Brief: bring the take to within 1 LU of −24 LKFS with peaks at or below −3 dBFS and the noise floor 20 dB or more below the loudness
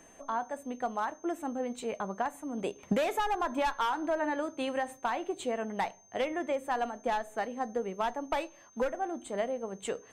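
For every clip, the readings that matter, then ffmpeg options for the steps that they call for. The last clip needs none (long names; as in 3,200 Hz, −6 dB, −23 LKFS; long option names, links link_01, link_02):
interfering tone 6,300 Hz; level of the tone −59 dBFS; integrated loudness −34.0 LKFS; sample peak −17.0 dBFS; target loudness −24.0 LKFS
→ -af "bandreject=frequency=6300:width=30"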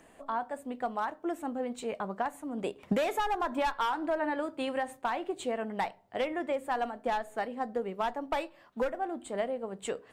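interfering tone none found; integrated loudness −34.0 LKFS; sample peak −17.0 dBFS; target loudness −24.0 LKFS
→ -af "volume=10dB"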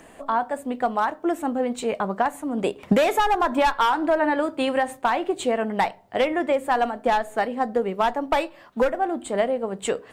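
integrated loudness −24.0 LKFS; sample peak −7.0 dBFS; background noise floor −49 dBFS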